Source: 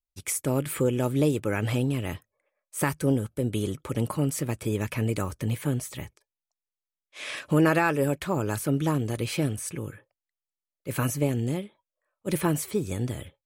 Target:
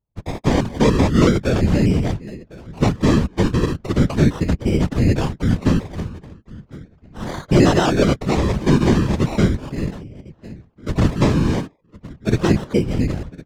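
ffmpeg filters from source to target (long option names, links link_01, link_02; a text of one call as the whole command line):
ffmpeg -i in.wav -filter_complex "[0:a]asplit=2[link_01][link_02];[link_02]adelay=1056,lowpass=frequency=960:poles=1,volume=-19.5dB,asplit=2[link_03][link_04];[link_04]adelay=1056,lowpass=frequency=960:poles=1,volume=0.24[link_05];[link_01][link_03][link_05]amix=inputs=3:normalize=0,aresample=16000,acrusher=samples=9:mix=1:aa=0.000001:lfo=1:lforange=5.4:lforate=0.37,aresample=44100,apsyclip=15.5dB,adynamicsmooth=sensitivity=5.5:basefreq=2700,lowshelf=frequency=330:gain=8,afftfilt=real='hypot(re,im)*cos(2*PI*random(0))':imag='hypot(re,im)*sin(2*PI*random(1))':win_size=512:overlap=0.75,volume=-4.5dB" out.wav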